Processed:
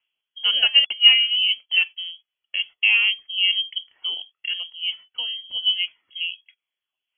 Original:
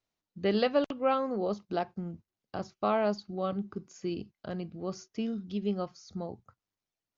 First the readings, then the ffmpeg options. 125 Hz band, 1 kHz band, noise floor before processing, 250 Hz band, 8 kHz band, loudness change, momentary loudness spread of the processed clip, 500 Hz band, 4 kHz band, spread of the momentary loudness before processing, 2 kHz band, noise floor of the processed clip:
under -25 dB, -12.5 dB, under -85 dBFS, under -30 dB, n/a, +13.5 dB, 16 LU, under -20 dB, +30.0 dB, 13 LU, +22.5 dB, under -85 dBFS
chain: -af "equalizer=f=580:t=o:w=2.3:g=11.5,aphaser=in_gain=1:out_gain=1:delay=3.1:decay=0.43:speed=0.28:type=triangular,lowpass=f=2.9k:t=q:w=0.5098,lowpass=f=2.9k:t=q:w=0.6013,lowpass=f=2.9k:t=q:w=0.9,lowpass=f=2.9k:t=q:w=2.563,afreqshift=-3400"

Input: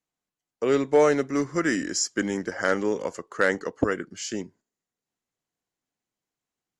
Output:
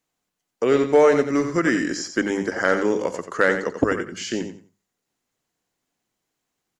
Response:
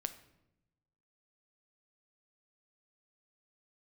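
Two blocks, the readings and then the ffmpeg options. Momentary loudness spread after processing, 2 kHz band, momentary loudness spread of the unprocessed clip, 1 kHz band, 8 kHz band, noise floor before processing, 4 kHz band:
12 LU, +4.5 dB, 12 LU, +4.0 dB, -3.5 dB, under -85 dBFS, +1.0 dB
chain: -filter_complex "[0:a]acrossover=split=3800[a][b];[b]acompressor=threshold=-43dB:ratio=4:attack=1:release=60[c];[a][c]amix=inputs=2:normalize=0,bandreject=f=50:t=h:w=6,bandreject=f=100:t=h:w=6,bandreject=f=150:t=h:w=6,bandreject=f=200:t=h:w=6,asplit=2[d][e];[e]acompressor=threshold=-35dB:ratio=6,volume=1dB[f];[d][f]amix=inputs=2:normalize=0,aecho=1:1:89|178|267:0.376|0.0864|0.0199,volume=2dB"

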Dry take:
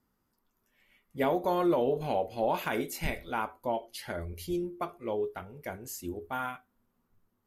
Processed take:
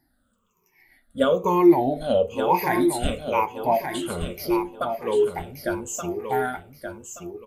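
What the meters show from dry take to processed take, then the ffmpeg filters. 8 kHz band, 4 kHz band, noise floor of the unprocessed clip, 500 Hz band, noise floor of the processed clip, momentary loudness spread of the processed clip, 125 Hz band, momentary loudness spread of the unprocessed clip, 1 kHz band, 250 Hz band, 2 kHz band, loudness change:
+10.5 dB, +8.5 dB, -78 dBFS, +9.0 dB, -69 dBFS, 17 LU, +7.0 dB, 12 LU, +9.0 dB, +11.0 dB, +6.5 dB, +9.5 dB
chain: -af "afftfilt=real='re*pow(10,23/40*sin(2*PI*(0.77*log(max(b,1)*sr/1024/100)/log(2)-(-1.1)*(pts-256)/sr)))':imag='im*pow(10,23/40*sin(2*PI*(0.77*log(max(b,1)*sr/1024/100)/log(2)-(-1.1)*(pts-256)/sr)))':win_size=1024:overlap=0.75,aecho=1:1:1176|2352|3528:0.447|0.121|0.0326,volume=2.5dB"

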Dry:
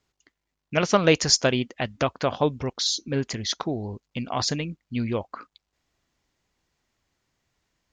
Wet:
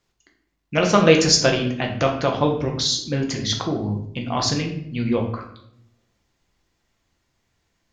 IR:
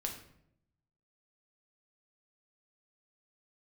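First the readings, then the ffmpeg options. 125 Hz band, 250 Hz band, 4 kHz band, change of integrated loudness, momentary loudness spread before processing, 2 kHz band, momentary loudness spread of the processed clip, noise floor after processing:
+5.5 dB, +5.5 dB, +4.0 dB, +4.5 dB, 12 LU, +4.0 dB, 12 LU, -73 dBFS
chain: -filter_complex "[1:a]atrim=start_sample=2205[a];[0:a][a]afir=irnorm=-1:irlink=0,volume=3.5dB"

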